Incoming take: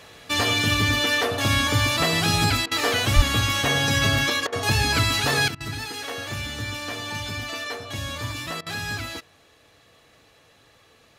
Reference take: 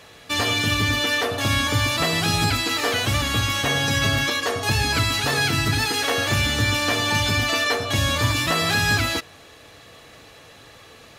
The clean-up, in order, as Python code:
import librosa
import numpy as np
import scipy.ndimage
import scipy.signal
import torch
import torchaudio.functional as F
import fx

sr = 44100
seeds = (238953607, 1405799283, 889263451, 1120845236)

y = fx.fix_deplosive(x, sr, at_s=(3.15,))
y = fx.fix_interpolate(y, sr, at_s=(2.66, 4.47, 5.55, 8.61), length_ms=53.0)
y = fx.fix_level(y, sr, at_s=5.48, step_db=10.0)